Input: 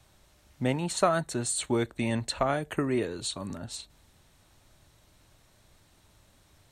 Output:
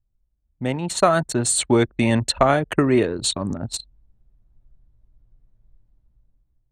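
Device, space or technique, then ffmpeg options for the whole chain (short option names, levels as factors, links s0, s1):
voice memo with heavy noise removal: -af "anlmdn=1.58,dynaudnorm=f=280:g=7:m=5.31"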